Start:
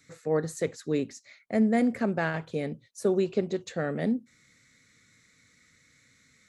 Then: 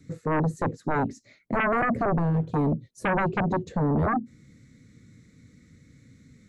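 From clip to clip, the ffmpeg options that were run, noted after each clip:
-filter_complex "[0:a]acrossover=split=390[a][b];[a]aeval=exprs='0.15*sin(PI/2*7.08*val(0)/0.15)':c=same[c];[b]acompressor=threshold=-40dB:ratio=6[d];[c][d]amix=inputs=2:normalize=0,volume=-4dB"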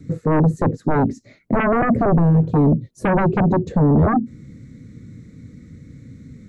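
-filter_complex "[0:a]tiltshelf=f=970:g=6,asplit=2[a][b];[b]alimiter=level_in=1dB:limit=-24dB:level=0:latency=1:release=48,volume=-1dB,volume=0dB[c];[a][c]amix=inputs=2:normalize=0,volume=2dB"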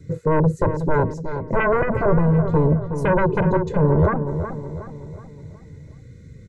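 -filter_complex "[0:a]aecho=1:1:2:0.73,asplit=2[a][b];[b]adelay=369,lowpass=f=1.9k:p=1,volume=-8.5dB,asplit=2[c][d];[d]adelay=369,lowpass=f=1.9k:p=1,volume=0.48,asplit=2[e][f];[f]adelay=369,lowpass=f=1.9k:p=1,volume=0.48,asplit=2[g][h];[h]adelay=369,lowpass=f=1.9k:p=1,volume=0.48,asplit=2[i][j];[j]adelay=369,lowpass=f=1.9k:p=1,volume=0.48[k];[c][e][g][i][k]amix=inputs=5:normalize=0[l];[a][l]amix=inputs=2:normalize=0,volume=-2.5dB"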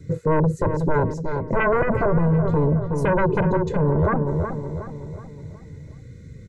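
-af "alimiter=limit=-13dB:level=0:latency=1:release=56,volume=1.5dB"

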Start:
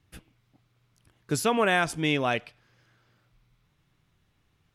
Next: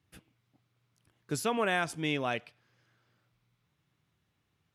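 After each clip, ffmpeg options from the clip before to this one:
-af "highpass=82,volume=-6dB"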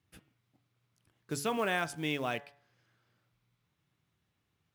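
-af "acrusher=bits=6:mode=log:mix=0:aa=0.000001,bandreject=f=142.4:t=h:w=4,bandreject=f=284.8:t=h:w=4,bandreject=f=427.2:t=h:w=4,bandreject=f=569.6:t=h:w=4,bandreject=f=712:t=h:w=4,bandreject=f=854.4:t=h:w=4,bandreject=f=996.8:t=h:w=4,bandreject=f=1.1392k:t=h:w=4,bandreject=f=1.2816k:t=h:w=4,bandreject=f=1.424k:t=h:w=4,bandreject=f=1.5664k:t=h:w=4,bandreject=f=1.7088k:t=h:w=4,bandreject=f=1.8512k:t=h:w=4,bandreject=f=1.9936k:t=h:w=4,volume=-2dB"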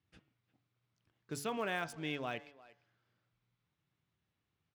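-filter_complex "[0:a]acrossover=split=6900[a][b];[b]aeval=exprs='val(0)*gte(abs(val(0)),0.00473)':c=same[c];[a][c]amix=inputs=2:normalize=0,asplit=2[d][e];[e]adelay=350,highpass=300,lowpass=3.4k,asoftclip=type=hard:threshold=-27.5dB,volume=-19dB[f];[d][f]amix=inputs=2:normalize=0,volume=-5.5dB"

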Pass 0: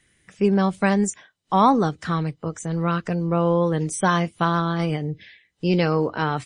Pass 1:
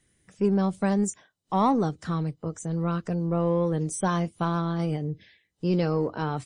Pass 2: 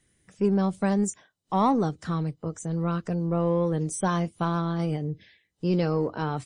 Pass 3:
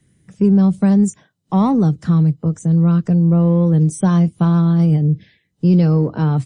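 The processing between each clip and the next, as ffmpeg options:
-filter_complex "[0:a]equalizer=f=2.2k:t=o:w=1.9:g=-8.5,asplit=2[a][b];[b]asoftclip=type=tanh:threshold=-22.5dB,volume=-9dB[c];[a][c]amix=inputs=2:normalize=0,volume=-5dB"
-af anull
-filter_complex "[0:a]equalizer=f=150:t=o:w=2:g=14.5,acrossover=split=130|3000[a][b][c];[b]acompressor=threshold=-19dB:ratio=1.5[d];[a][d][c]amix=inputs=3:normalize=0,volume=2.5dB"

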